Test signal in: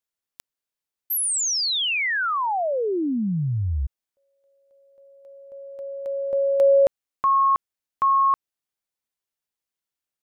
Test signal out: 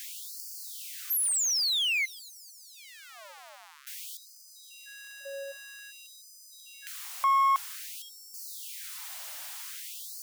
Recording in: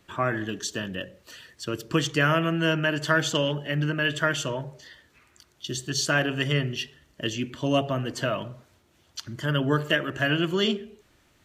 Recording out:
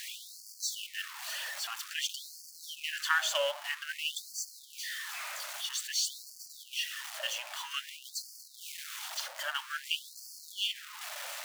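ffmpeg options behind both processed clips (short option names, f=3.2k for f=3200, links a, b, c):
-af "aeval=exprs='val(0)+0.5*0.0422*sgn(val(0))':c=same,aeval=exprs='0.473*(cos(1*acos(clip(val(0)/0.473,-1,1)))-cos(1*PI/2))+0.15*(cos(2*acos(clip(val(0)/0.473,-1,1)))-cos(2*PI/2))':c=same,afftfilt=real='re*gte(b*sr/1024,510*pow(4400/510,0.5+0.5*sin(2*PI*0.51*pts/sr)))':imag='im*gte(b*sr/1024,510*pow(4400/510,0.5+0.5*sin(2*PI*0.51*pts/sr)))':win_size=1024:overlap=0.75,volume=-6dB"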